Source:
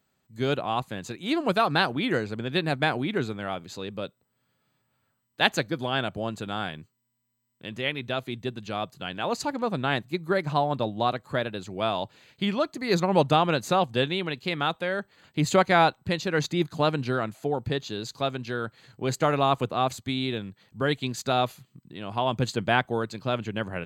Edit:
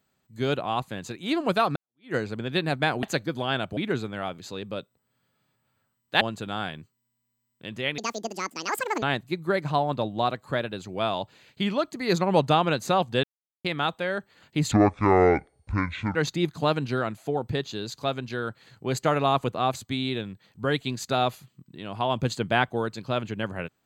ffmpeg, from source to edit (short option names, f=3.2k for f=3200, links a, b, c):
-filter_complex "[0:a]asplit=11[a][b][c][d][e][f][g][h][i][j][k];[a]atrim=end=1.76,asetpts=PTS-STARTPTS,afade=t=out:st=1.756:d=0.004:c=hsin[l];[b]atrim=start=1.76:end=3.032,asetpts=PTS-STARTPTS,afade=t=in:d=0.39:c=exp[m];[c]atrim=start=5.468:end=6.212[n];[d]atrim=start=3.028:end=5.472[o];[e]atrim=start=6.208:end=7.984[p];[f]atrim=start=7.98:end=9.84,asetpts=PTS-STARTPTS,asetrate=78498,aresample=44100,atrim=end_sample=46082,asetpts=PTS-STARTPTS[q];[g]atrim=start=9.836:end=14.05,asetpts=PTS-STARTPTS,afade=t=out:st=4.21:d=0.004:c=hsin[r];[h]atrim=start=14.05:end=14.46,asetpts=PTS-STARTPTS,volume=0[s];[i]atrim=start=14.46:end=15.534,asetpts=PTS-STARTPTS,afade=t=in:d=0.004:c=hsin[t];[j]atrim=start=15.53:end=16.32,asetpts=PTS-STARTPTS,asetrate=24255,aresample=44100[u];[k]atrim=start=16.316[v];[l][m]concat=n=2:v=0:a=1[w];[w][n]acrossfade=d=0.004:c1=hsin:c2=hsin[x];[x][o]acrossfade=d=0.004:c1=hsin:c2=hsin[y];[y][p]acrossfade=d=0.004:c1=hsin:c2=hsin[z];[z][q]acrossfade=d=0.004:c1=hsin:c2=hsin[aa];[r][s][t]concat=n=3:v=0:a=1[ab];[aa][ab]acrossfade=d=0.004:c1=hsin:c2=hsin[ac];[ac][u]acrossfade=d=0.004:c1=hsin:c2=hsin[ad];[ad][v]acrossfade=d=0.004:c1=hsin:c2=hsin"